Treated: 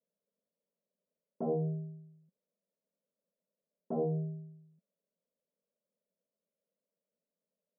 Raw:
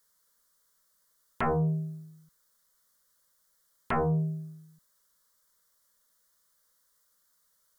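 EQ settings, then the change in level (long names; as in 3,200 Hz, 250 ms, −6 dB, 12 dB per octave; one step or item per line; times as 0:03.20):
Chebyshev band-pass filter 180–640 Hz, order 3
high-frequency loss of the air 500 metres
0.0 dB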